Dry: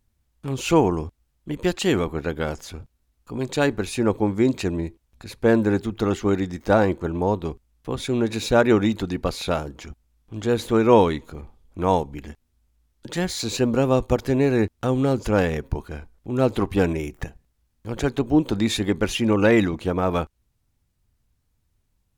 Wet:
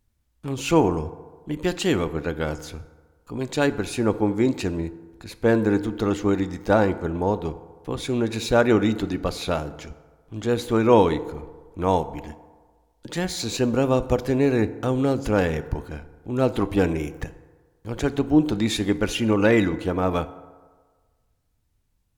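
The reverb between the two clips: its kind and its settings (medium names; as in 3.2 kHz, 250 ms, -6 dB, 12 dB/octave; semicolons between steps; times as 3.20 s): FDN reverb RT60 1.5 s, low-frequency decay 0.8×, high-frequency decay 0.45×, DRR 13 dB; trim -1 dB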